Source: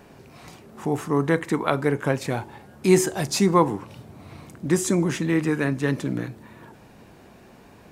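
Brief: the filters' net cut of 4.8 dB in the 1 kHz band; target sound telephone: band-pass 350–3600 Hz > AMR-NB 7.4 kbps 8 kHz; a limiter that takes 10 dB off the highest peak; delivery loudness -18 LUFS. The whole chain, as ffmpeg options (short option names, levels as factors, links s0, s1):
-af "equalizer=f=1000:t=o:g=-5.5,alimiter=limit=0.178:level=0:latency=1,highpass=350,lowpass=3600,volume=5.01" -ar 8000 -c:a libopencore_amrnb -b:a 7400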